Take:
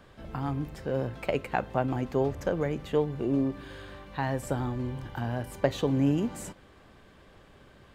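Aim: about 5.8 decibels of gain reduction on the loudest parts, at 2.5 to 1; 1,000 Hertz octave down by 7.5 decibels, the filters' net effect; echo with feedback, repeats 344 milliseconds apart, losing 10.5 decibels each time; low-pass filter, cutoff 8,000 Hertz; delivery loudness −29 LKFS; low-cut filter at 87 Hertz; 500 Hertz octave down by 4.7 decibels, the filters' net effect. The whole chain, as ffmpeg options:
ffmpeg -i in.wav -af "highpass=87,lowpass=8000,equalizer=frequency=500:width_type=o:gain=-3.5,equalizer=frequency=1000:width_type=o:gain=-9,acompressor=threshold=-31dB:ratio=2.5,aecho=1:1:344|688|1032:0.299|0.0896|0.0269,volume=7.5dB" out.wav

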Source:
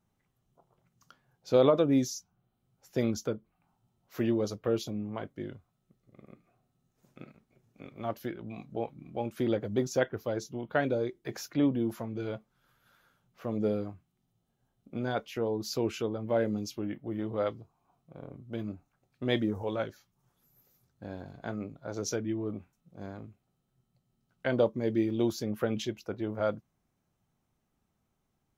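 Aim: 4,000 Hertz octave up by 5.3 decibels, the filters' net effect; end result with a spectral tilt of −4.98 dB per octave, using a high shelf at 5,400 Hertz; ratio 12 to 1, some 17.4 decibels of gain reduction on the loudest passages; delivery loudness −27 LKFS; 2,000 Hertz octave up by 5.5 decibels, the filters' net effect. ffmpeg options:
ffmpeg -i in.wav -af "equalizer=frequency=2000:width_type=o:gain=6.5,equalizer=frequency=4000:width_type=o:gain=6.5,highshelf=frequency=5400:gain=-4,acompressor=threshold=-35dB:ratio=12,volume=14.5dB" out.wav

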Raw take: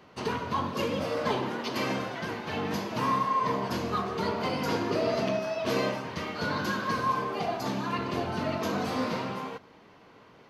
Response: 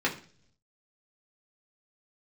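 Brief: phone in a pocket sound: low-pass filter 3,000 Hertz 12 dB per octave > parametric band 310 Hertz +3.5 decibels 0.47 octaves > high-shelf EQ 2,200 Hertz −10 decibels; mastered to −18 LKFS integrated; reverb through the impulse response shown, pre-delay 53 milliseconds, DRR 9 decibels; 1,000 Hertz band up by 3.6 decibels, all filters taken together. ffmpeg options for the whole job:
-filter_complex "[0:a]equalizer=frequency=1000:width_type=o:gain=6,asplit=2[link_01][link_02];[1:a]atrim=start_sample=2205,adelay=53[link_03];[link_02][link_03]afir=irnorm=-1:irlink=0,volume=-19.5dB[link_04];[link_01][link_04]amix=inputs=2:normalize=0,lowpass=3000,equalizer=frequency=310:width_type=o:width=0.47:gain=3.5,highshelf=frequency=2200:gain=-10,volume=10dB"

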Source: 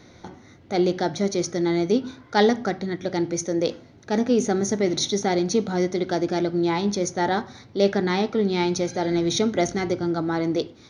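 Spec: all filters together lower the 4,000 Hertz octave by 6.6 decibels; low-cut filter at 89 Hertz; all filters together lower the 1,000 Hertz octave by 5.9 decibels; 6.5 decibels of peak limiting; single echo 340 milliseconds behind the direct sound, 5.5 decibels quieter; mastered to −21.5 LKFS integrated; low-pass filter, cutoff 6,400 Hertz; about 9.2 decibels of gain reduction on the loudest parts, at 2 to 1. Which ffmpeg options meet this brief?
ffmpeg -i in.wav -af "highpass=89,lowpass=6400,equalizer=frequency=1000:width_type=o:gain=-8.5,equalizer=frequency=4000:width_type=o:gain=-6.5,acompressor=threshold=-33dB:ratio=2,alimiter=limit=-24dB:level=0:latency=1,aecho=1:1:340:0.531,volume=11.5dB" out.wav

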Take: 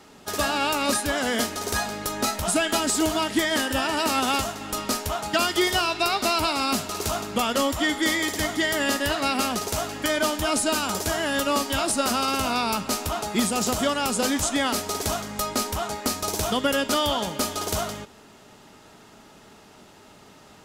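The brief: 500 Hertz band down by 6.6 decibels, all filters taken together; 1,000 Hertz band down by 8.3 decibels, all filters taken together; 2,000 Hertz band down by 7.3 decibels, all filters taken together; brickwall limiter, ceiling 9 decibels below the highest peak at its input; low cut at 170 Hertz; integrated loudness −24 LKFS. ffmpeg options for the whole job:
ffmpeg -i in.wav -af "highpass=170,equalizer=frequency=500:width_type=o:gain=-5.5,equalizer=frequency=1000:width_type=o:gain=-7.5,equalizer=frequency=2000:width_type=o:gain=-7,volume=7dB,alimiter=limit=-14.5dB:level=0:latency=1" out.wav

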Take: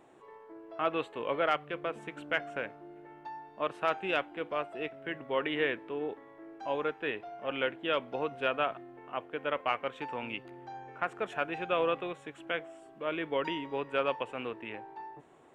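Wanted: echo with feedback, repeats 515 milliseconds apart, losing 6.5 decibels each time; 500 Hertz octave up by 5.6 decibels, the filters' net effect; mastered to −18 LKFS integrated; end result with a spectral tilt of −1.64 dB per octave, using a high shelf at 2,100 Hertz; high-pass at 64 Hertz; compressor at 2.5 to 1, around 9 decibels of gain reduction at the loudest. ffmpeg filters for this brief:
ffmpeg -i in.wav -af "highpass=64,equalizer=frequency=500:width_type=o:gain=6,highshelf=frequency=2100:gain=7,acompressor=threshold=-34dB:ratio=2.5,aecho=1:1:515|1030|1545|2060|2575|3090:0.473|0.222|0.105|0.0491|0.0231|0.0109,volume=18dB" out.wav

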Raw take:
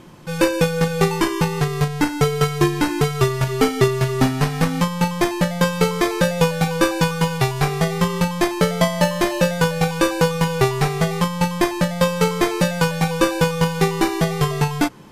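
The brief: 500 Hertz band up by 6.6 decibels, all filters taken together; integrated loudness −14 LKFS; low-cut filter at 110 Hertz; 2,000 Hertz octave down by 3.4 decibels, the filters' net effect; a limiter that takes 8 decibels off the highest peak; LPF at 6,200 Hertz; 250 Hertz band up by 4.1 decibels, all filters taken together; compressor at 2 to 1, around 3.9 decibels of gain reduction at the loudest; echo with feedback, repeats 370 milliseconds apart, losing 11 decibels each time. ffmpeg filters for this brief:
ffmpeg -i in.wav -af "highpass=110,lowpass=6200,equalizer=frequency=250:width_type=o:gain=5,equalizer=frequency=500:width_type=o:gain=6.5,equalizer=frequency=2000:width_type=o:gain=-5,acompressor=threshold=-14dB:ratio=2,alimiter=limit=-9.5dB:level=0:latency=1,aecho=1:1:370|740|1110:0.282|0.0789|0.0221,volume=6dB" out.wav

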